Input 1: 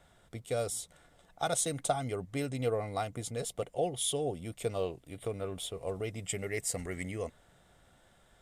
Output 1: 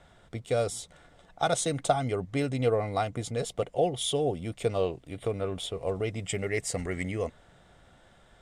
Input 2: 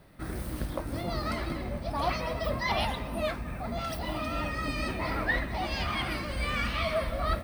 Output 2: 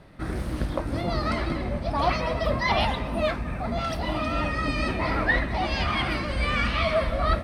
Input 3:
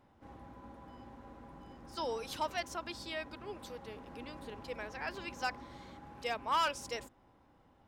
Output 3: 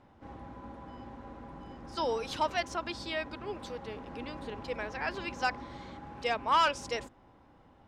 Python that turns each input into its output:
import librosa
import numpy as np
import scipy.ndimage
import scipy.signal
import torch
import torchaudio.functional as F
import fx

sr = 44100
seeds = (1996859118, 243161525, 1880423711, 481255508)

y = fx.air_absorb(x, sr, metres=59.0)
y = y * librosa.db_to_amplitude(6.0)